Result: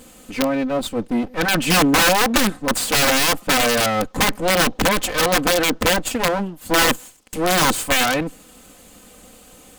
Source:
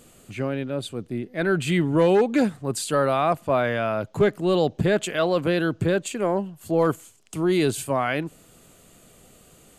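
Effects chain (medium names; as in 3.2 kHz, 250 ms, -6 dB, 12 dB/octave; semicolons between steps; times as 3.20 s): comb filter that takes the minimum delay 3.9 ms; integer overflow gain 19 dB; trim +8.5 dB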